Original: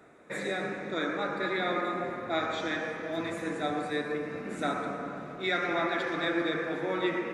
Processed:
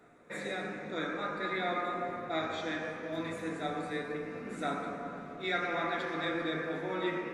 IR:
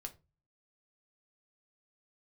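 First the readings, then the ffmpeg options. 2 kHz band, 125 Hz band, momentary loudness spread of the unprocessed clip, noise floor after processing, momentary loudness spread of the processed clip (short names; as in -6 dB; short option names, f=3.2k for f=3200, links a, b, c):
-4.0 dB, -2.5 dB, 5 LU, -45 dBFS, 6 LU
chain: -filter_complex "[1:a]atrim=start_sample=2205[a];[0:a][a]afir=irnorm=-1:irlink=0"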